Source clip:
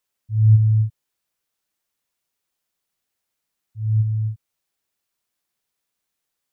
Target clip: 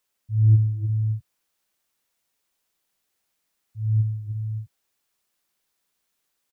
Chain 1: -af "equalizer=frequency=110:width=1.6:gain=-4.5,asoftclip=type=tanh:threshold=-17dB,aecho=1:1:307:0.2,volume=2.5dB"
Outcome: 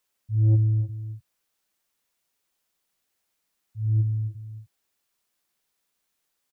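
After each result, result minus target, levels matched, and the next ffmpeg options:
soft clipping: distortion +13 dB; echo-to-direct −9.5 dB
-af "equalizer=frequency=110:width=1.6:gain=-4.5,asoftclip=type=tanh:threshold=-8.5dB,aecho=1:1:307:0.2,volume=2.5dB"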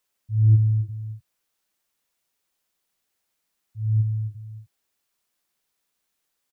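echo-to-direct −9.5 dB
-af "equalizer=frequency=110:width=1.6:gain=-4.5,asoftclip=type=tanh:threshold=-8.5dB,aecho=1:1:307:0.596,volume=2.5dB"

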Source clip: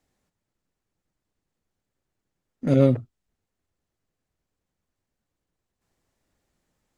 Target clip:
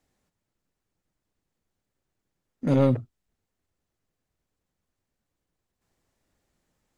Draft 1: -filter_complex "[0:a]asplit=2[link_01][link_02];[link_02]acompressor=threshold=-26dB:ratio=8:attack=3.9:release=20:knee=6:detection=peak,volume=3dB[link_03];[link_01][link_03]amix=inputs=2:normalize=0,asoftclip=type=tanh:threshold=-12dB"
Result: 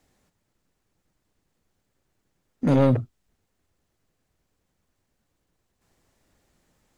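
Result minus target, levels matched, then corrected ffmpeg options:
downward compressor: peak gain reduction +12 dB
-af "asoftclip=type=tanh:threshold=-12dB"

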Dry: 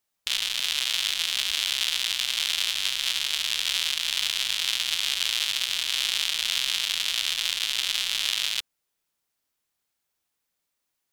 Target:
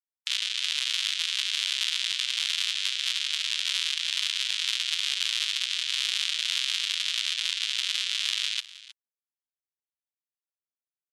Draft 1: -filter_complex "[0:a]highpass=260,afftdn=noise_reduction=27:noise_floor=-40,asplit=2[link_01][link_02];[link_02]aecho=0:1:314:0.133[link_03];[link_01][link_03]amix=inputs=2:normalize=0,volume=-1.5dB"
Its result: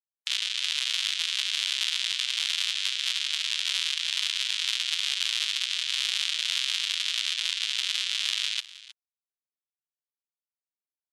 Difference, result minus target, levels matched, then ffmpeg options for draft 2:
500 Hz band +9.5 dB
-filter_complex "[0:a]highpass=610,afftdn=noise_reduction=27:noise_floor=-40,asplit=2[link_01][link_02];[link_02]aecho=0:1:314:0.133[link_03];[link_01][link_03]amix=inputs=2:normalize=0,volume=-1.5dB"

